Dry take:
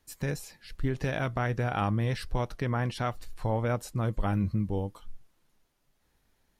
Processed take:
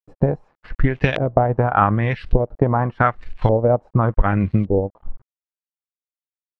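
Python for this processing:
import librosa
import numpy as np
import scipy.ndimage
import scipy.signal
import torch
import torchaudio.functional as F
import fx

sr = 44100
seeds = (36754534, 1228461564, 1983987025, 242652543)

y = np.where(np.abs(x) >= 10.0 ** (-48.5 / 20.0), x, 0.0)
y = fx.transient(y, sr, attack_db=8, sustain_db=-9)
y = fx.filter_lfo_lowpass(y, sr, shape='saw_up', hz=0.86, low_hz=440.0, high_hz=3300.0, q=2.1)
y = y * 10.0 ** (8.0 / 20.0)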